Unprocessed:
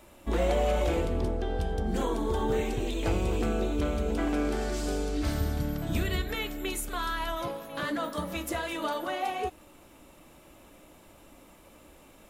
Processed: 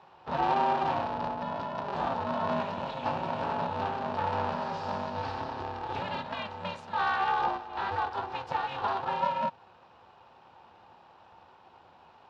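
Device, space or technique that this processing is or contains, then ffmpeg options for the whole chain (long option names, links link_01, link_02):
ring modulator pedal into a guitar cabinet: -filter_complex "[0:a]highpass=frequency=210:poles=1,equalizer=frequency=5200:width=3.7:gain=5.5,asettb=1/sr,asplit=3[link_01][link_02][link_03];[link_01]atrim=end=6.984[link_04];[link_02]atrim=start=6.98:end=7.58,asetpts=PTS-STARTPTS,afade=type=in:duration=0.004:curve=qsin,afade=type=out:start_time=0.596:duration=0.004:curve=qsin,equalizer=frequency=1100:width=0.31:gain=4.5[link_05];[link_03]atrim=start=7.576[link_06];[link_04][link_05]acrossfade=duration=0.004:curve1=hsin:curve2=qsin[link_07];[link_07][link_06]acrossfade=duration=0.004:curve1=qsin:curve2=hsin,aeval=exprs='val(0)*sgn(sin(2*PI*200*n/s))':channel_layout=same,highpass=100,equalizer=frequency=130:width_type=q:width=4:gain=-8,equalizer=frequency=300:width_type=q:width=4:gain=-8,equalizer=frequency=450:width_type=q:width=4:gain=-7,equalizer=frequency=890:width_type=q:width=4:gain=10,equalizer=frequency=2100:width_type=q:width=4:gain=-10,equalizer=frequency=3300:width_type=q:width=4:gain=-5,lowpass=frequency=3700:width=0.5412,lowpass=frequency=3700:width=1.3066"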